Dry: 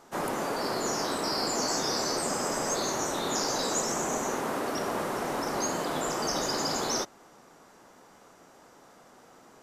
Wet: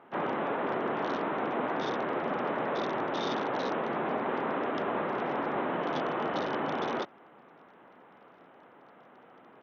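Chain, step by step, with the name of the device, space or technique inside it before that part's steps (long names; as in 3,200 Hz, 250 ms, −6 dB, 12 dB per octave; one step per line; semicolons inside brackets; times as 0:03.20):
Bluetooth headset (high-pass filter 130 Hz 12 dB per octave; downsampling to 8,000 Hz; SBC 64 kbit/s 48,000 Hz)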